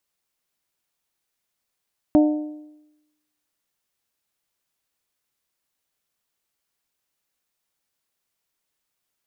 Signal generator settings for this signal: metal hit bell, lowest mode 302 Hz, modes 4, decay 0.94 s, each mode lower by 8 dB, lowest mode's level -10 dB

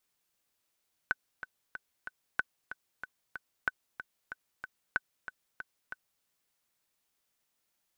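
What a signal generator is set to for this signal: metronome 187 bpm, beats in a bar 4, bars 4, 1.51 kHz, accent 12 dB -14.5 dBFS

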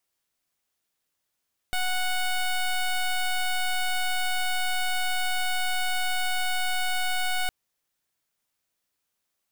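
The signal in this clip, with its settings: pulse 737 Hz, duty 12% -25.5 dBFS 5.76 s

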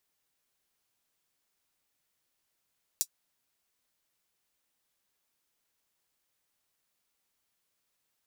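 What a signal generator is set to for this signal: closed hi-hat, high-pass 5.8 kHz, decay 0.07 s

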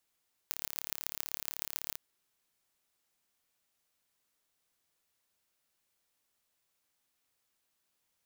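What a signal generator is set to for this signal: pulse train 36 per s, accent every 5, -6 dBFS 1.45 s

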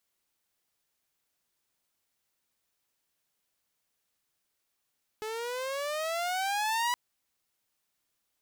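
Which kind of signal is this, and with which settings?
gliding synth tone saw, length 1.72 s, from 427 Hz, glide +14.5 st, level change +8 dB, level -23.5 dB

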